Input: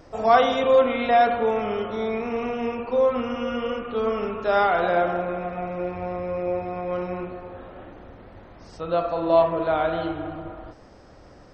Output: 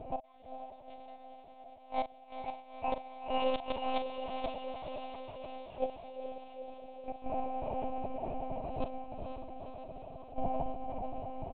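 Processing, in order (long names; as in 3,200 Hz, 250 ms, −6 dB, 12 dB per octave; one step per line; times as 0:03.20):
adaptive Wiener filter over 25 samples
elliptic band-stop filter 160–610 Hz, stop band 40 dB
high-shelf EQ 2,600 Hz +7 dB
downward compressor 4 to 1, threshold −31 dBFS, peak gain reduction 16.5 dB
gate with flip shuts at −29 dBFS, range −40 dB
phaser with its sweep stopped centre 360 Hz, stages 6
double-tracking delay 42 ms −10 dB
on a send: feedback delay with all-pass diffusion 460 ms, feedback 71%, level −6 dB
on the sum: one-pitch LPC vocoder at 8 kHz 260 Hz
level +10.5 dB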